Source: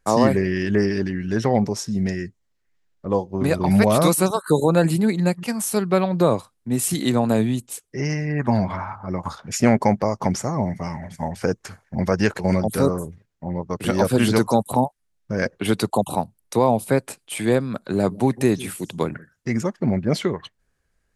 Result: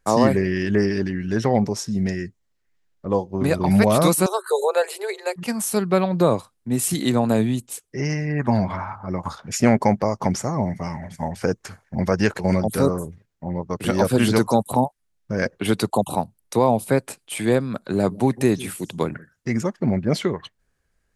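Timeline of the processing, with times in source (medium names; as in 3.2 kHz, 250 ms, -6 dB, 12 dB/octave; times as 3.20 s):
4.26–5.36 s: Chebyshev high-pass 370 Hz, order 10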